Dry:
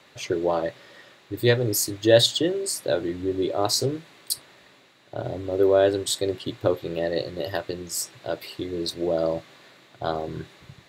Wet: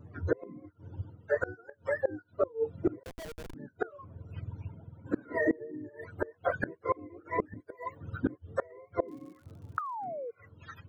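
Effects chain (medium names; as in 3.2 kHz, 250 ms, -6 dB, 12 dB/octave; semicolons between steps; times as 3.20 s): spectrum inverted on a logarithmic axis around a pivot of 420 Hz; 7.60–8.01 s: tone controls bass -9 dB, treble +6 dB; 9.78–10.31 s: painted sound fall 450–1300 Hz -13 dBFS; level rider gain up to 11.5 dB; reverb removal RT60 1.8 s; in parallel at +2 dB: compression 16:1, threshold -29 dBFS, peak gain reduction 23.5 dB; on the sum: inverted gate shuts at -13 dBFS, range -28 dB; 3.03–3.54 s: Schmitt trigger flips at -41.5 dBFS; 9.07–10.03 s: crackle 170 per s -> 47 per s -48 dBFS; trim -3 dB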